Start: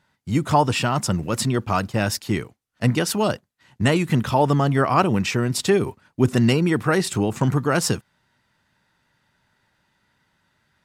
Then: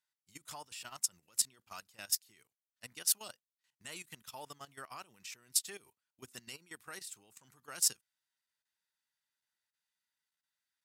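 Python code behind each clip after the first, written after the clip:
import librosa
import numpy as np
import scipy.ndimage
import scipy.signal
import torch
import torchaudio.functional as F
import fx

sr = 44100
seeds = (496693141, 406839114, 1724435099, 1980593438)

y = scipy.signal.lfilter([1.0, -0.97], [1.0], x)
y = fx.level_steps(y, sr, step_db=13)
y = fx.upward_expand(y, sr, threshold_db=-51.0, expansion=1.5)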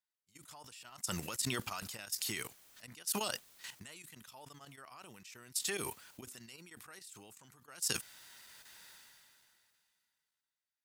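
y = fx.sustainer(x, sr, db_per_s=23.0)
y = F.gain(torch.from_numpy(y), -7.0).numpy()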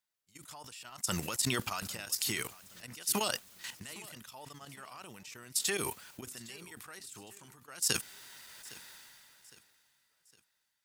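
y = fx.echo_feedback(x, sr, ms=810, feedback_pct=42, wet_db=-20.5)
y = F.gain(torch.from_numpy(y), 4.5).numpy()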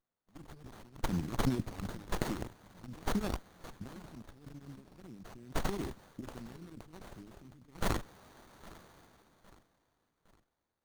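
y = scipy.signal.sosfilt(scipy.signal.ellip(3, 1.0, 40, [310.0, 4600.0], 'bandstop', fs=sr, output='sos'), x)
y = fx.peak_eq(y, sr, hz=13000.0, db=-14.5, octaves=0.48)
y = fx.running_max(y, sr, window=17)
y = F.gain(torch.from_numpy(y), 5.0).numpy()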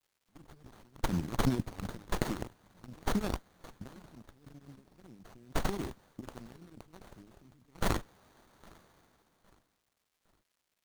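y = fx.law_mismatch(x, sr, coded='A')
y = fx.dmg_crackle(y, sr, seeds[0], per_s=390.0, level_db=-68.0)
y = F.gain(torch.from_numpy(y), 3.0).numpy()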